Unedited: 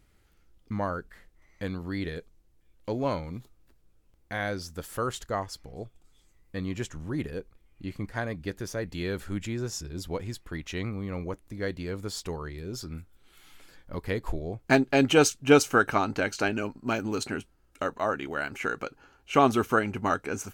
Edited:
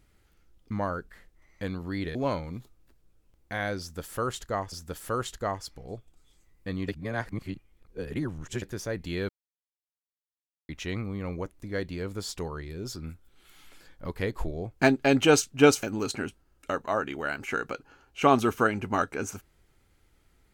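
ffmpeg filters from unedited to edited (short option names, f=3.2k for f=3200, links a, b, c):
-filter_complex "[0:a]asplit=8[a][b][c][d][e][f][g][h];[a]atrim=end=2.152[i];[b]atrim=start=2.948:end=5.522[j];[c]atrim=start=4.598:end=6.762[k];[d]atrim=start=6.758:end=8.502,asetpts=PTS-STARTPTS,areverse[l];[e]atrim=start=8.498:end=9.17,asetpts=PTS-STARTPTS,afade=t=out:st=0.668:d=0.004:c=hsin[m];[f]atrim=start=9.17:end=10.57,asetpts=PTS-STARTPTS,volume=0[n];[g]atrim=start=10.57:end=15.712,asetpts=PTS-STARTPTS,afade=t=in:d=0.004:c=hsin[o];[h]atrim=start=16.948[p];[i][j]acrossfade=d=0.004:c1=hsin:c2=hsin[q];[q][k]acrossfade=d=0.004:c1=hsin:c2=hsin[r];[r][l]acrossfade=d=0.004:c1=hsin:c2=hsin[s];[m][n][o]concat=n=3:v=0:a=1[t];[s][t]acrossfade=d=0.004:c1=hsin:c2=hsin[u];[u][p]acrossfade=d=0.004:c1=hsin:c2=hsin"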